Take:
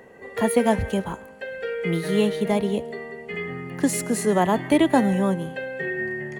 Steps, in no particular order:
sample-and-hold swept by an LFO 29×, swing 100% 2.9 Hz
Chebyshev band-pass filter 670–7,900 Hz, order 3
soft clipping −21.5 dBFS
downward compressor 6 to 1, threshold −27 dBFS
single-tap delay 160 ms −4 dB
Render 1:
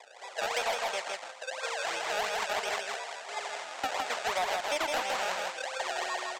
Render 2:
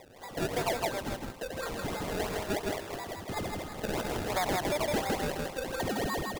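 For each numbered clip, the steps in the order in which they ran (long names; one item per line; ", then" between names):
sample-and-hold swept by an LFO, then Chebyshev band-pass filter, then soft clipping, then single-tap delay, then downward compressor
Chebyshev band-pass filter, then sample-and-hold swept by an LFO, then single-tap delay, then soft clipping, then downward compressor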